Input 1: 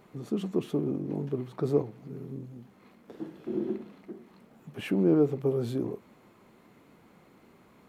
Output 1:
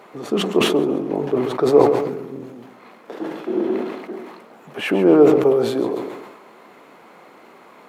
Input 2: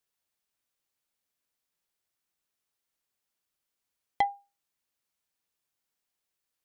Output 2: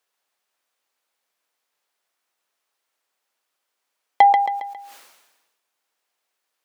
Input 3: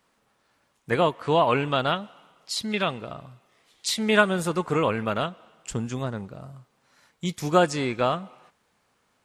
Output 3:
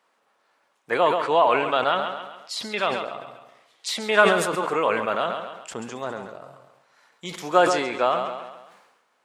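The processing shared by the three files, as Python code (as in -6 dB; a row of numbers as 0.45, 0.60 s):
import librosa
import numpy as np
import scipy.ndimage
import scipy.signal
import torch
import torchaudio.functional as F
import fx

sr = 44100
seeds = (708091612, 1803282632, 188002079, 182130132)

y = scipy.signal.sosfilt(scipy.signal.butter(2, 630.0, 'highpass', fs=sr, output='sos'), x)
y = fx.tilt_eq(y, sr, slope=-2.5)
y = fx.echo_feedback(y, sr, ms=136, feedback_pct=42, wet_db=-12)
y = fx.sustainer(y, sr, db_per_s=50.0)
y = librosa.util.normalize(y) * 10.0 ** (-1.5 / 20.0)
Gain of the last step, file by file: +17.0, +13.0, +3.5 dB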